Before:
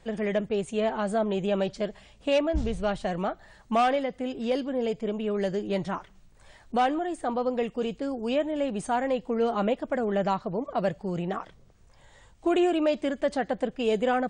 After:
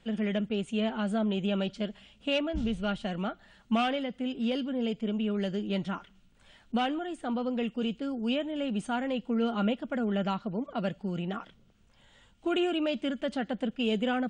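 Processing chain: bell 3000 Hz +11.5 dB 0.74 oct; small resonant body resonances 220/1400 Hz, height 11 dB, ringing for 35 ms; gain -8 dB

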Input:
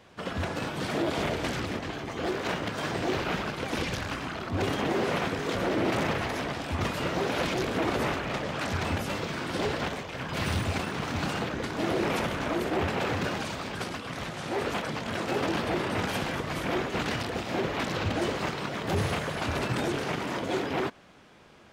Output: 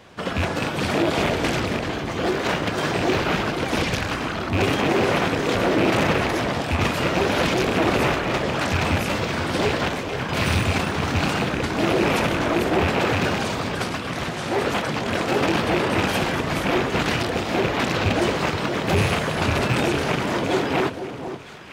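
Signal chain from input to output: rattling part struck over -31 dBFS, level -23 dBFS; on a send: echo with dull and thin repeats by turns 0.478 s, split 1000 Hz, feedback 51%, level -9 dB; on the sum: gain +7.5 dB

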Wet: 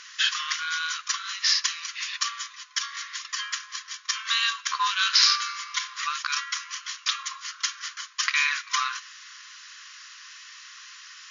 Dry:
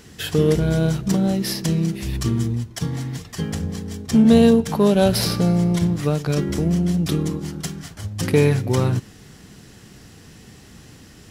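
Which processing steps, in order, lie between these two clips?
brick-wall FIR band-pass 1000–7100 Hz; gain +7 dB

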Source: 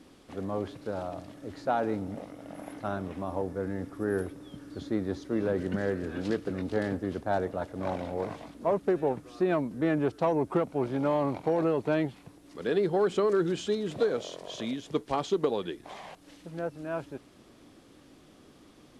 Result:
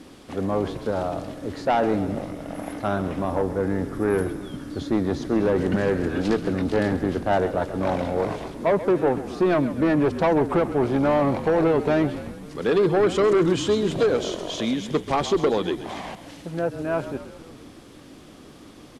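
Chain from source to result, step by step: in parallel at -5 dB: sine folder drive 7 dB, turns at -15.5 dBFS; on the sum: frequency-shifting echo 0.133 s, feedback 62%, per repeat -42 Hz, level -13 dB

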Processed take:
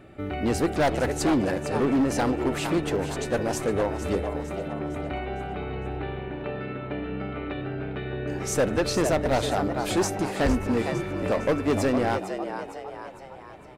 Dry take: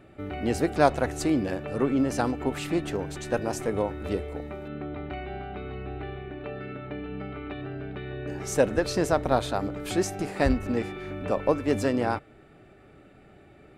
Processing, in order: frequency-shifting echo 0.457 s, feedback 49%, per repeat +90 Hz, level -11 dB; overloaded stage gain 21.5 dB; gain +3.5 dB

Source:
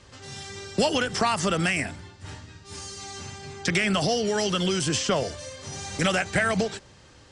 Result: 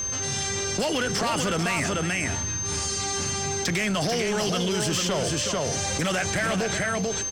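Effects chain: tapped delay 0.37/0.441 s -15.5/-6 dB; whine 6300 Hz -39 dBFS; soft clip -21.5 dBFS, distortion -12 dB; fast leveller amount 70%

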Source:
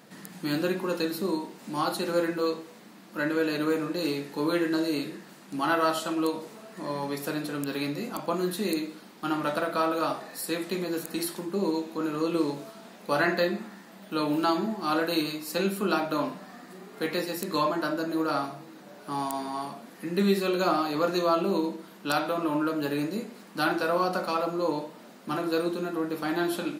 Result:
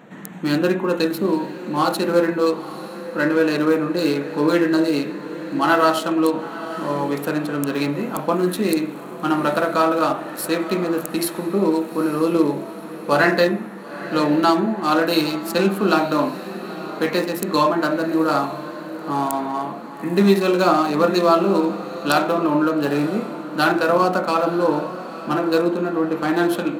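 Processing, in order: Wiener smoothing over 9 samples; diffused feedback echo 0.899 s, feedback 42%, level -13.5 dB; gain +9 dB

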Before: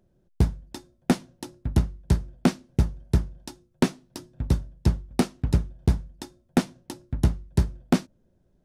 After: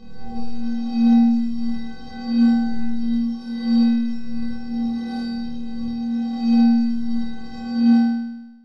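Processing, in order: spectral swells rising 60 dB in 2.35 s; resonant high shelf 3200 Hz +9 dB, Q 3; in parallel at -9.5 dB: sample-rate reducer 9500 Hz, jitter 0%; on the sum: air absorption 230 m; metallic resonator 230 Hz, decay 0.78 s, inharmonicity 0.03; flutter echo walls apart 4.4 m, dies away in 1 s

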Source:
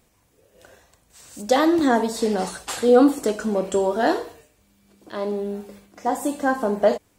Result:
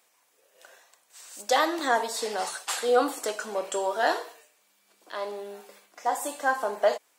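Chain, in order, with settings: HPF 730 Hz 12 dB/oct

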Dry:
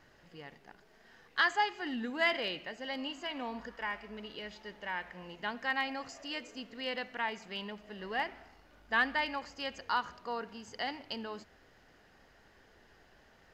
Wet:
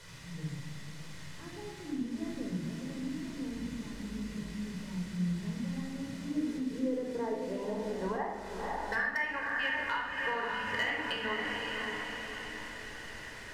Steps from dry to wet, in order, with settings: low-pass sweep 170 Hz -> 2600 Hz, 5.81–9.58; in parallel at -4 dB: requantised 8-bit, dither triangular; on the sum: LPF 6100 Hz 12 dB/oct; on a send: diffused feedback echo 0.539 s, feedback 51%, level -9.5 dB; on the sum: compressor 10:1, threshold -36 dBFS, peak gain reduction 22 dB; bell 1900 Hz +7.5 dB 0.22 oct; overloaded stage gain 28.5 dB; shoebox room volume 3000 m³, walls furnished, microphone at 4.9 m

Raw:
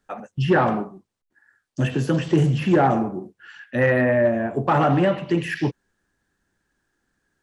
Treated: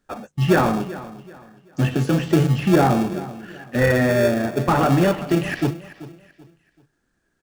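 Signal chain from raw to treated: notches 50/100/150 Hz; in parallel at -7 dB: sample-rate reducer 1000 Hz, jitter 0%; on the sum: feedback echo 0.384 s, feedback 32%, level -16.5 dB

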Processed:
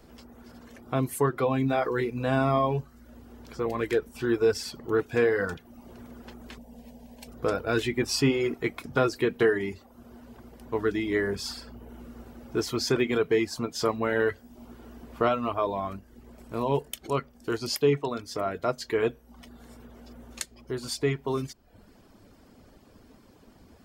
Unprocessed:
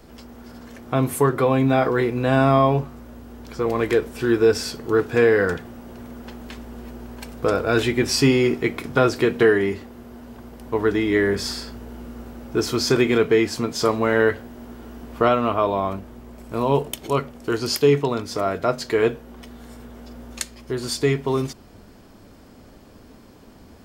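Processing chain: reverb removal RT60 0.64 s; 6.58–7.28 fixed phaser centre 350 Hz, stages 6; gain -6 dB

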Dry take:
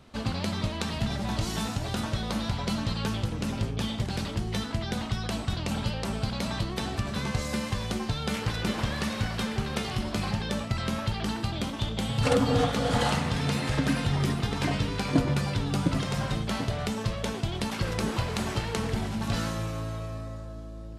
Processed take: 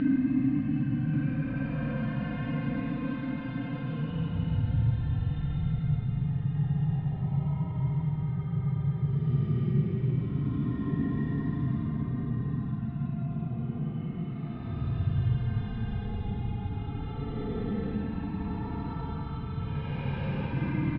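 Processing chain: spectral contrast raised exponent 1.7; Paulstretch 28×, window 0.05 s, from 13.9; upward compressor, threshold -34 dBFS; LPF 3000 Hz 24 dB/oct; on a send: echo 1.136 s -10 dB; on the sum: gain -3 dB

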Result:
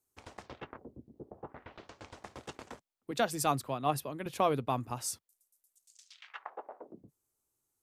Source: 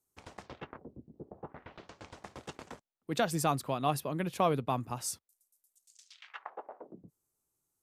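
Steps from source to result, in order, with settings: bell 170 Hz -10.5 dB 0.22 oct; 3.11–4.26 three-band expander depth 70%

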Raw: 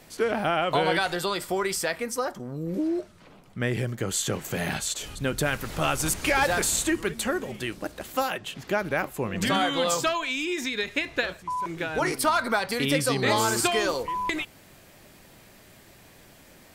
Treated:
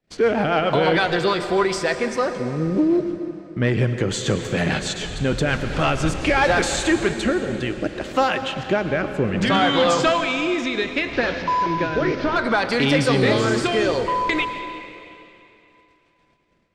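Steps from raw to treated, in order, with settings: 11.13–12.36 delta modulation 32 kbps, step -36.5 dBFS; gate -48 dBFS, range -35 dB; in parallel at +0.5 dB: limiter -17 dBFS, peak gain reduction 5.5 dB; on the sum: rotary speaker horn 6.7 Hz, later 0.65 Hz, at 5.18; soft clip -13 dBFS, distortion -20 dB; air absorption 120 m; on a send at -8.5 dB: reverb RT60 3.1 s, pre-delay 97 ms; on the sum: gain +4.5 dB

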